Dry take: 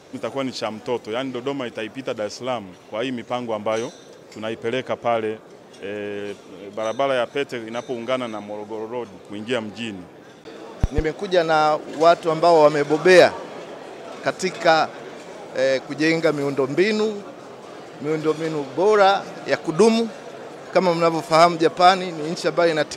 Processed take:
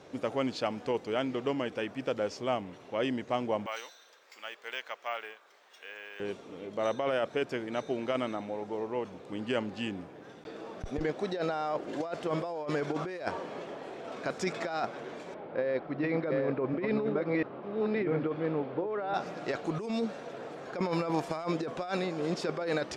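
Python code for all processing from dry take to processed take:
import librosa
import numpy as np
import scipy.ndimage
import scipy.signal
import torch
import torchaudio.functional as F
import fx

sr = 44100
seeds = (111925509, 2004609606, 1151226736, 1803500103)

y = fx.chain(x, sr, fx.highpass(hz=1300.0, slope=12),
    fx.resample_bad(factor=2, down='none', up='hold'), at=(3.66, 6.2))
y = fx.chain(y, sr, fx.reverse_delay(ms=696, wet_db=-3),
    fx.air_absorb(metres=410.0), at=(15.34, 19.14))
y = fx.high_shelf(y, sr, hz=5500.0, db=-10.5)
y = fx.over_compress(y, sr, threshold_db=-22.0, ratio=-1.0)
y = F.gain(torch.from_numpy(y), -8.5).numpy()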